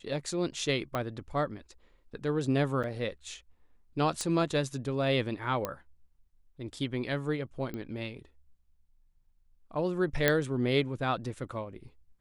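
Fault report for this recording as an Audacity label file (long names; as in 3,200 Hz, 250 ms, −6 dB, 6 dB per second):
0.950000	0.950000	click −18 dBFS
2.830000	2.840000	drop-out 7 ms
4.210000	4.210000	click −19 dBFS
5.650000	5.650000	click −17 dBFS
7.740000	7.740000	click −25 dBFS
10.280000	10.280000	click −9 dBFS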